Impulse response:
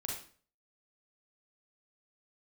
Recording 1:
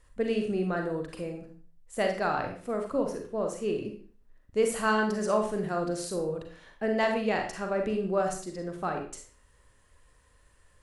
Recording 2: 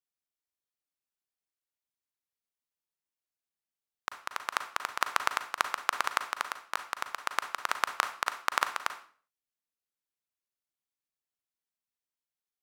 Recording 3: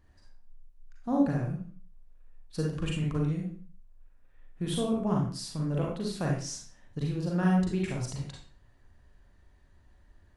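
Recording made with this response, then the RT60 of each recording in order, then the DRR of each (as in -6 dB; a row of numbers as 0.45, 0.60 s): 3; 0.45, 0.45, 0.45 s; 3.0, 8.5, -2.0 dB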